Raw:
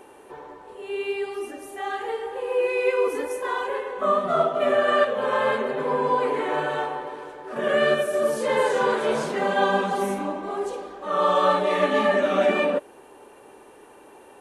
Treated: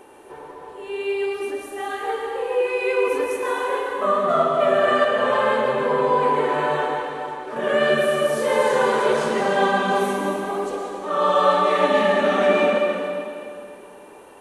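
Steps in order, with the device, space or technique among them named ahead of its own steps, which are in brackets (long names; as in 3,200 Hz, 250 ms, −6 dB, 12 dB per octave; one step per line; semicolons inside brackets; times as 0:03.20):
stairwell (convolution reverb RT60 2.5 s, pre-delay 102 ms, DRR 1.5 dB)
level +1 dB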